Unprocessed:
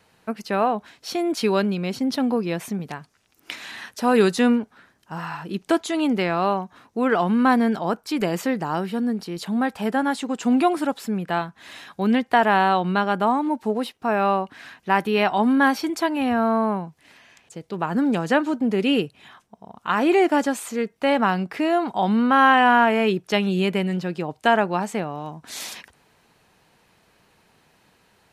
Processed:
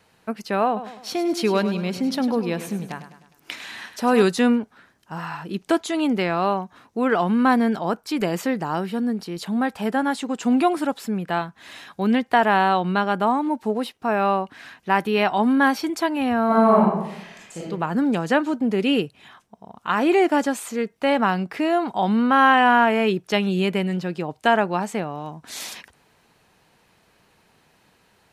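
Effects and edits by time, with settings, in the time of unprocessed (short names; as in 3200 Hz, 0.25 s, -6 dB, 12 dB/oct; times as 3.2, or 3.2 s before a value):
0.66–4.23 feedback echo 0.102 s, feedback 49%, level -11.5 dB
16.46–17.65 reverb throw, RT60 0.88 s, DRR -7 dB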